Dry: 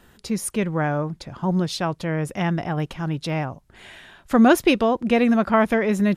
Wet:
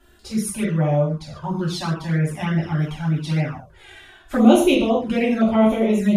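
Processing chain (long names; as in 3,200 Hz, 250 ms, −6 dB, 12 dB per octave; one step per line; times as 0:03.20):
reverb whose tail is shaped and stops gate 180 ms falling, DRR −6 dB
flanger swept by the level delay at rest 3 ms, full sweep at −9 dBFS
level −4.5 dB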